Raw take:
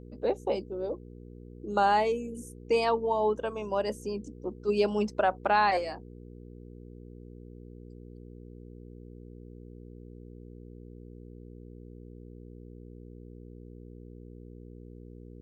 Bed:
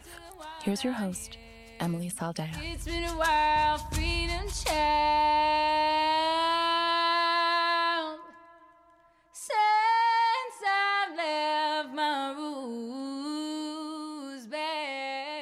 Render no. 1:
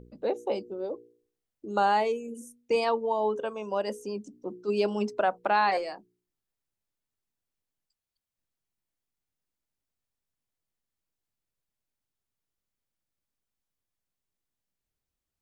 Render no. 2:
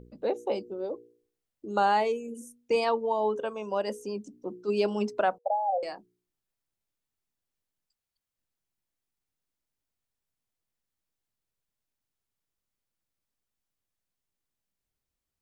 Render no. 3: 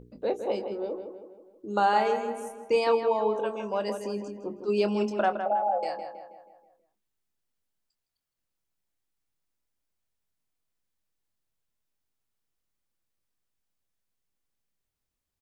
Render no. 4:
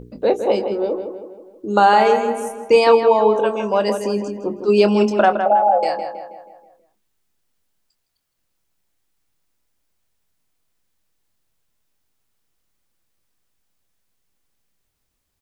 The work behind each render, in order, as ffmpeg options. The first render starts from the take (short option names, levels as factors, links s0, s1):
-af "bandreject=f=60:t=h:w=4,bandreject=f=120:t=h:w=4,bandreject=f=180:t=h:w=4,bandreject=f=240:t=h:w=4,bandreject=f=300:t=h:w=4,bandreject=f=360:t=h:w=4,bandreject=f=420:t=h:w=4,bandreject=f=480:t=h:w=4"
-filter_complex "[0:a]asettb=1/sr,asplit=3[s0][s1][s2];[s0]atrim=end=5.384[s3];[s1]atrim=start=5.38:end=5.83,asetpts=PTS-STARTPTS,afade=t=in:d=0.004:c=qsin,afade=t=out:st=0.446:d=0.004:c=qsin,asuperpass=centerf=640:order=12:qfactor=1.9[s4];[s2]atrim=start=5.826[s5];[s3][s4]acrossfade=d=0.004:c1=hsin:c2=qsin[s6];[s6][s5]acrossfade=d=0.004:c1=qsin:c2=hsin"
-filter_complex "[0:a]asplit=2[s0][s1];[s1]adelay=24,volume=0.299[s2];[s0][s2]amix=inputs=2:normalize=0,asplit=2[s3][s4];[s4]adelay=161,lowpass=f=2900:p=1,volume=0.422,asplit=2[s5][s6];[s6]adelay=161,lowpass=f=2900:p=1,volume=0.52,asplit=2[s7][s8];[s8]adelay=161,lowpass=f=2900:p=1,volume=0.52,asplit=2[s9][s10];[s10]adelay=161,lowpass=f=2900:p=1,volume=0.52,asplit=2[s11][s12];[s12]adelay=161,lowpass=f=2900:p=1,volume=0.52,asplit=2[s13][s14];[s14]adelay=161,lowpass=f=2900:p=1,volume=0.52[s15];[s3][s5][s7][s9][s11][s13][s15]amix=inputs=7:normalize=0"
-af "volume=3.76,alimiter=limit=0.708:level=0:latency=1"